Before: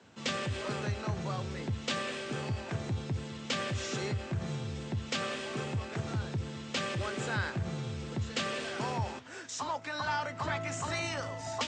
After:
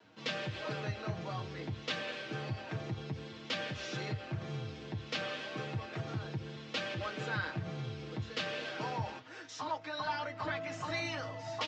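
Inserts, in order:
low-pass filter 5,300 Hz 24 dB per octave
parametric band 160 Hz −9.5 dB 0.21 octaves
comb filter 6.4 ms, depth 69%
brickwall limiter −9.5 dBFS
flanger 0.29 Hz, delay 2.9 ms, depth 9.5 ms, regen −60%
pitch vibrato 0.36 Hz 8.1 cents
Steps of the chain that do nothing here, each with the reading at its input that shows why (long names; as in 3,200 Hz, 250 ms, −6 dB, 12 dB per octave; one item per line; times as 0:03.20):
brickwall limiter −9.5 dBFS: peak of its input −18.0 dBFS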